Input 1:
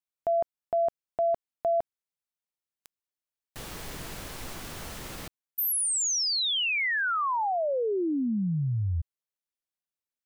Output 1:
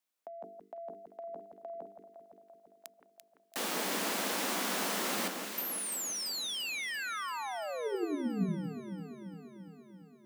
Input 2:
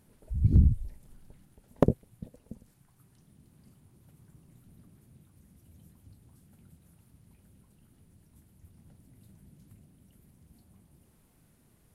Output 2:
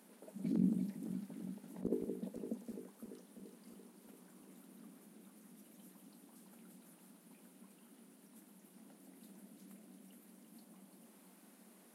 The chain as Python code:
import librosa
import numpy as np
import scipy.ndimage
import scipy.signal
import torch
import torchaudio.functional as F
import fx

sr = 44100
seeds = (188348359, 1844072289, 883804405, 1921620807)

y = scipy.signal.sosfilt(scipy.signal.cheby1(6, 1.0, 190.0, 'highpass', fs=sr, output='sos'), x)
y = fx.hum_notches(y, sr, base_hz=50, count=9)
y = fx.over_compress(y, sr, threshold_db=-34.0, ratio=-0.5)
y = fx.echo_alternate(y, sr, ms=170, hz=1700.0, feedback_pct=80, wet_db=-6)